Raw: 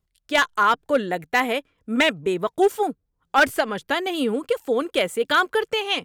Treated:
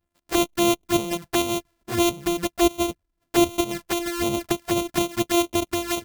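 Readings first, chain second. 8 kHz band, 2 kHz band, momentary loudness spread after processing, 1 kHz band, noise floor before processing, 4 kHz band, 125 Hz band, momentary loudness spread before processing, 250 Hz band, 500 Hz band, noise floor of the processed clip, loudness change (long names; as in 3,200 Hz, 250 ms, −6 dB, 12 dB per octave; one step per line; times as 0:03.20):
+9.5 dB, −10.0 dB, 6 LU, −5.5 dB, −76 dBFS, −2.0 dB, +6.5 dB, 7 LU, +4.0 dB, −2.5 dB, −78 dBFS, −1.5 dB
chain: samples sorted by size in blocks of 128 samples
high-shelf EQ 7,500 Hz +6 dB
flanger swept by the level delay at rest 11.6 ms, full sweep at −19 dBFS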